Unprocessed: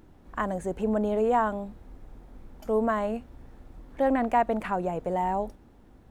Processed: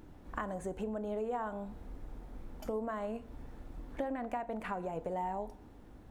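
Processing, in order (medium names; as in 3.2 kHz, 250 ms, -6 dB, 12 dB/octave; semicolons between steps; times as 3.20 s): compression 6:1, threshold -35 dBFS, peak gain reduction 16 dB; FDN reverb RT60 0.71 s, high-frequency decay 0.6×, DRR 12.5 dB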